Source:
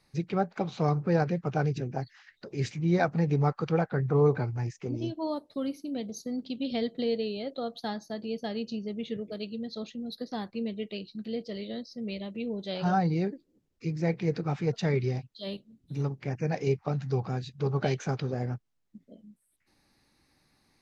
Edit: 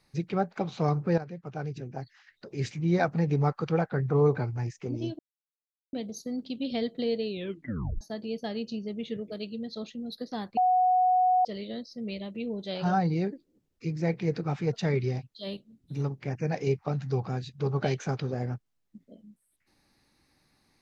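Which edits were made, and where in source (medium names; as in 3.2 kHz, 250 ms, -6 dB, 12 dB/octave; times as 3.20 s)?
1.18–2.80 s: fade in, from -13.5 dB
5.19–5.93 s: mute
7.30 s: tape stop 0.71 s
10.57–11.45 s: bleep 736 Hz -19.5 dBFS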